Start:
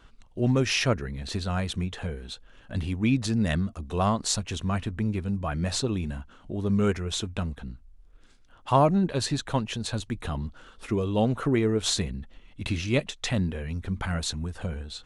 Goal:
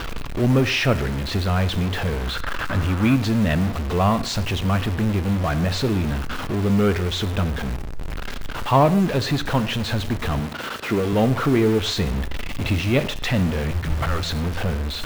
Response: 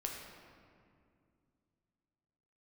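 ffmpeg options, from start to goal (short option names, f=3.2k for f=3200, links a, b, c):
-filter_complex "[0:a]aeval=exprs='val(0)+0.5*0.0562*sgn(val(0))':c=same,lowpass=3.7k,asplit=2[a][b];[1:a]atrim=start_sample=2205,afade=t=out:st=0.2:d=0.01,atrim=end_sample=9261[c];[b][c]afir=irnorm=-1:irlink=0,volume=-5.5dB[d];[a][d]amix=inputs=2:normalize=0,acrusher=bits=7:dc=4:mix=0:aa=0.000001,asettb=1/sr,asplit=3[e][f][g];[e]atrim=end=2.274[h];[f]atrim=start=2.27:end=3.15,asetpts=PTS-STARTPTS,afade=t=in:d=0.004:c=qsin,afade=t=out:st=0.876:d=0.004:c=qsin,equalizer=f=1.3k:w=1.8:g=9.5[i];[g]atrim=start=3.146[j];[h][i]acrossfade=d=0.004:c1=hsin:c2=qsin[k];[k][j]acrossfade=d=0.004:c1=qsin:c2=hsin,asettb=1/sr,asplit=3[l][m][n];[l]atrim=end=10.404[o];[m]atrim=start=10.4:end=11.13,asetpts=PTS-STARTPTS,afade=t=in:d=0.004:c=qsin,afade=t=out:st=0.726:d=0.004:c=qsin,highpass=130[p];[n]atrim=start=11.126[q];[o][p]acrossfade=d=0.004:c1=hsin:c2=qsin[r];[r][q]acrossfade=d=0.004:c1=qsin:c2=hsin,asettb=1/sr,asplit=3[s][t][u];[s]atrim=end=13.714[v];[t]atrim=start=13.71:end=14.23,asetpts=PTS-STARTPTS,afade=t=in:d=0.004:c=qsin,afade=t=out:st=0.516:d=0.004:c=qsin,afreqshift=-170[w];[u]atrim=start=14.226[x];[v][w]acrossfade=d=0.004:c1=hsin:c2=qsin[y];[y][x]acrossfade=d=0.004:c1=qsin:c2=hsin"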